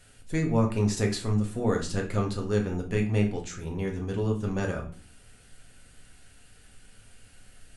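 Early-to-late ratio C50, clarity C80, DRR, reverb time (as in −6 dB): 10.5 dB, 15.0 dB, 1.0 dB, 0.40 s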